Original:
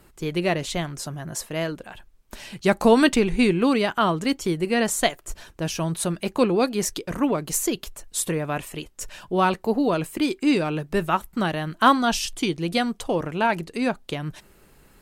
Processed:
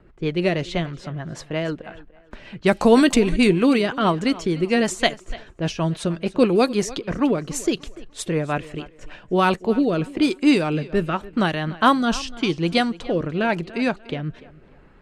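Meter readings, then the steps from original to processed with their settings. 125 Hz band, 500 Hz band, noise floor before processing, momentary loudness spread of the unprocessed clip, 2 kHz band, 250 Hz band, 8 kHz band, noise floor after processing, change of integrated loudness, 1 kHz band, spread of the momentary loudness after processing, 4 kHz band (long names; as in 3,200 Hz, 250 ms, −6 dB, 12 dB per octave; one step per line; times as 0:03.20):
+3.0 dB, +2.5 dB, −55 dBFS, 13 LU, +1.5 dB, +3.0 dB, −4.5 dB, −50 dBFS, +2.0 dB, 0.0 dB, 13 LU, +1.5 dB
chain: rotating-speaker cabinet horn 6.3 Hz, later 0.9 Hz, at 0:08.64
feedback echo with a high-pass in the loop 293 ms, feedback 33%, high-pass 190 Hz, level −18 dB
low-pass that shuts in the quiet parts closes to 1,900 Hz, open at −17 dBFS
level +4.5 dB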